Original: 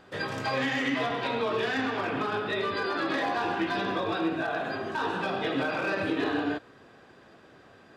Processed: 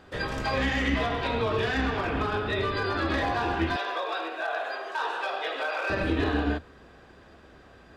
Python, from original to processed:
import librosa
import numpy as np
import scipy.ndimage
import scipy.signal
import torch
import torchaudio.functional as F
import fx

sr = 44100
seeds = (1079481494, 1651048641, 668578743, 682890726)

y = fx.octave_divider(x, sr, octaves=2, level_db=1.0)
y = fx.highpass(y, sr, hz=500.0, slope=24, at=(3.76, 5.9))
y = y * 10.0 ** (1.0 / 20.0)